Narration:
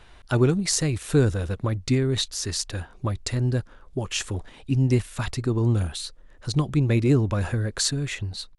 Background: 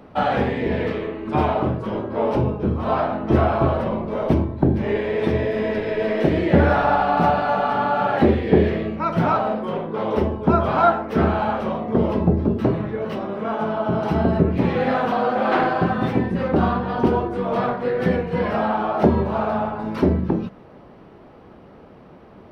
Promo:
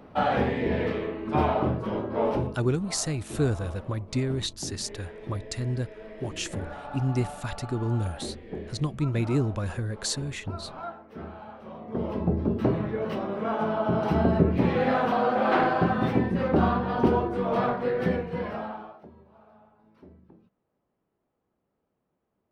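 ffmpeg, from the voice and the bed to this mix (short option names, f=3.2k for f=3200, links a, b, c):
-filter_complex "[0:a]adelay=2250,volume=-5.5dB[a];[1:a]volume=14dB,afade=t=out:st=2.27:d=0.34:silence=0.133352,afade=t=in:st=11.6:d=1.23:silence=0.125893,afade=t=out:st=17.77:d=1.24:silence=0.0316228[b];[a][b]amix=inputs=2:normalize=0"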